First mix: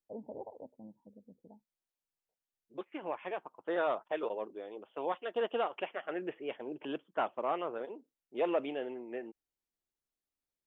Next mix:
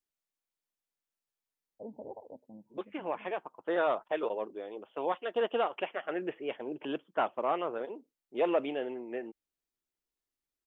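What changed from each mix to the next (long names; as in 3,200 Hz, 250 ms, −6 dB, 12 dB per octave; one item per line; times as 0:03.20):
first voice: entry +1.70 s
second voice +3.0 dB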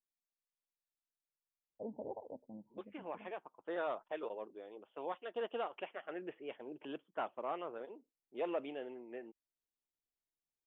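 second voice −9.5 dB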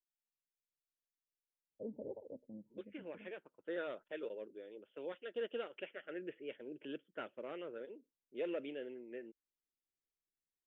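master: add flat-topped bell 900 Hz −15 dB 1 octave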